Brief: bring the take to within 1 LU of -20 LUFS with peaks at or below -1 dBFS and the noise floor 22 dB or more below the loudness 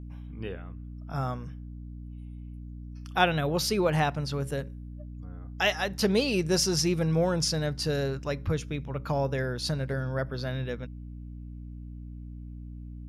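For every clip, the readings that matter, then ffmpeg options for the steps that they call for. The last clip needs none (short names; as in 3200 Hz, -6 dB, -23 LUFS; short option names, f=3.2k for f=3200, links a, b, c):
hum 60 Hz; harmonics up to 300 Hz; hum level -38 dBFS; loudness -28.5 LUFS; peak -7.5 dBFS; loudness target -20.0 LUFS
-> -af "bandreject=f=60:t=h:w=6,bandreject=f=120:t=h:w=6,bandreject=f=180:t=h:w=6,bandreject=f=240:t=h:w=6,bandreject=f=300:t=h:w=6"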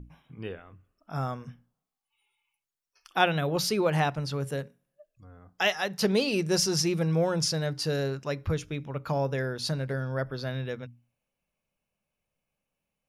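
hum none; loudness -28.5 LUFS; peak -7.5 dBFS; loudness target -20.0 LUFS
-> -af "volume=8.5dB,alimiter=limit=-1dB:level=0:latency=1"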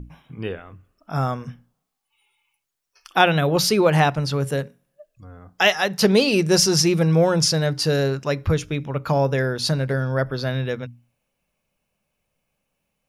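loudness -20.0 LUFS; peak -1.0 dBFS; noise floor -77 dBFS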